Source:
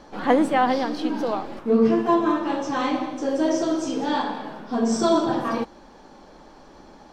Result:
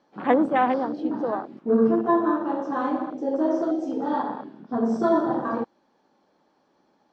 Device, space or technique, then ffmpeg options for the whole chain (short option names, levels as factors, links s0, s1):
over-cleaned archive recording: -af "highpass=140,lowpass=6300,afwtdn=0.0447,volume=0.891"